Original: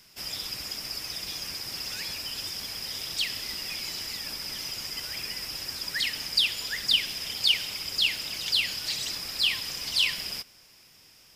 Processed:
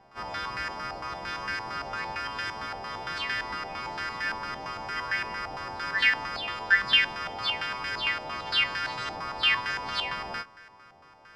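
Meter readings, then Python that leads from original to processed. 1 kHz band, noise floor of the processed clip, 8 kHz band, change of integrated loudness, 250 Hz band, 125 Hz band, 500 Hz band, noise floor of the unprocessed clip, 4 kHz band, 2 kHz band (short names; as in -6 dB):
+16.0 dB, -54 dBFS, under -15 dB, -0.5 dB, +4.0 dB, +3.0 dB, +8.5 dB, -56 dBFS, -4.5 dB, +7.0 dB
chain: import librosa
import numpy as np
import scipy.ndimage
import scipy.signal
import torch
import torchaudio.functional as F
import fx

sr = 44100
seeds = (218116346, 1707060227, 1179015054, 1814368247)

y = fx.freq_snap(x, sr, grid_st=2)
y = fx.filter_held_lowpass(y, sr, hz=8.8, low_hz=790.0, high_hz=1600.0)
y = F.gain(torch.from_numpy(y), 6.0).numpy()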